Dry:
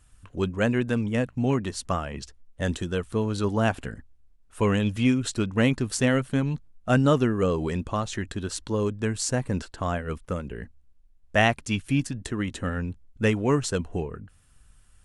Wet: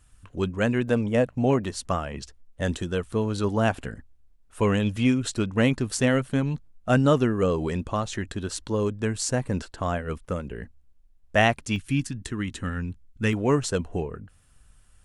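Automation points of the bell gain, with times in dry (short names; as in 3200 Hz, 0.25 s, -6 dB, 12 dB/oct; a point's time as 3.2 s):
bell 600 Hz 1 oct
-0.5 dB
from 0.88 s +8.5 dB
from 1.64 s +1.5 dB
from 11.76 s -9.5 dB
from 13.33 s +2.5 dB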